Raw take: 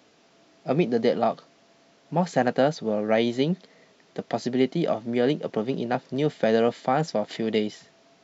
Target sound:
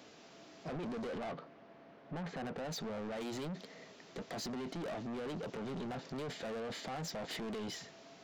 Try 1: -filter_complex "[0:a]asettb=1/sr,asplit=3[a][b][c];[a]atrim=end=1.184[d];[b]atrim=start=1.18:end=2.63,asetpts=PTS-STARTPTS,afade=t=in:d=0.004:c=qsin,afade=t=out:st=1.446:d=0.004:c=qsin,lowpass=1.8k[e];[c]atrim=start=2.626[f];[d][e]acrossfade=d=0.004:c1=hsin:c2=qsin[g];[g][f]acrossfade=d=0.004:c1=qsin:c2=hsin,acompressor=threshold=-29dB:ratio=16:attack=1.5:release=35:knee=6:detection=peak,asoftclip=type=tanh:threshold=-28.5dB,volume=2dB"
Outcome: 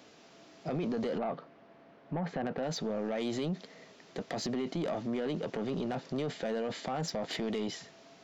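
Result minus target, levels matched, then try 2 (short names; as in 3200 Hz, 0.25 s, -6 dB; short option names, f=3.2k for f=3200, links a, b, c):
soft clip: distortion -11 dB
-filter_complex "[0:a]asettb=1/sr,asplit=3[a][b][c];[a]atrim=end=1.184[d];[b]atrim=start=1.18:end=2.63,asetpts=PTS-STARTPTS,afade=t=in:d=0.004:c=qsin,afade=t=out:st=1.446:d=0.004:c=qsin,lowpass=1.8k[e];[c]atrim=start=2.626[f];[d][e]acrossfade=d=0.004:c1=hsin:c2=qsin[g];[g][f]acrossfade=d=0.004:c1=qsin:c2=hsin,acompressor=threshold=-29dB:ratio=16:attack=1.5:release=35:knee=6:detection=peak,asoftclip=type=tanh:threshold=-40.5dB,volume=2dB"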